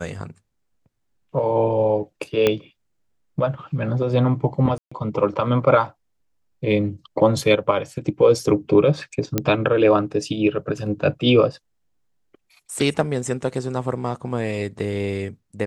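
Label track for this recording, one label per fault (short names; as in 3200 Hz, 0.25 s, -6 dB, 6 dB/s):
2.470000	2.470000	pop -5 dBFS
4.780000	4.920000	gap 0.135 s
9.380000	9.380000	pop -5 dBFS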